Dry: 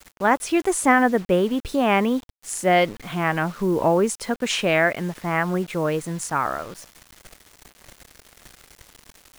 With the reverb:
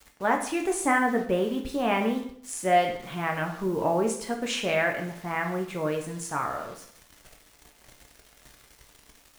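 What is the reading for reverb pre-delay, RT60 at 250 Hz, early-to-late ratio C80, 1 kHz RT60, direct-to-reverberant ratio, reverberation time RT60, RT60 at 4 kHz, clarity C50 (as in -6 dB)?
4 ms, 0.65 s, 11.5 dB, 0.60 s, 2.0 dB, 0.65 s, 0.60 s, 8.0 dB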